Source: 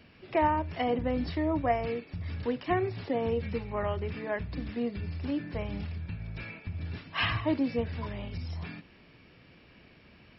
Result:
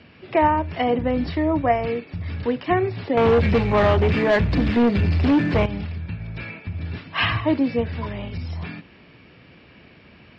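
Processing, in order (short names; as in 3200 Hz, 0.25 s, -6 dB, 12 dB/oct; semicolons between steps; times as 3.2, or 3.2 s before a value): HPF 60 Hz; 3.17–5.66 sample leveller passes 3; LPF 4500 Hz 12 dB/oct; gain +8 dB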